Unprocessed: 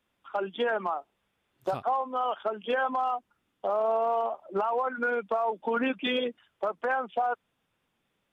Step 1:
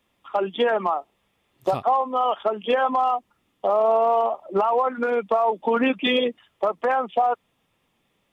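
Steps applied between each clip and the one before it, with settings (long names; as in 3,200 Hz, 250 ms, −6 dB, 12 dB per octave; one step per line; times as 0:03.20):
notch filter 1,500 Hz, Q 5.4
level +7.5 dB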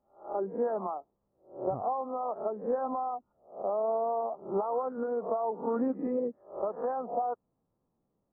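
peak hold with a rise ahead of every peak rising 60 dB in 0.40 s
Gaussian smoothing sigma 9 samples
level −7.5 dB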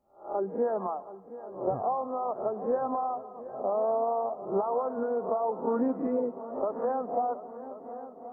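echo machine with several playback heads 361 ms, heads second and third, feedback 53%, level −15.5 dB
convolution reverb RT60 0.95 s, pre-delay 126 ms, DRR 18.5 dB
level +2 dB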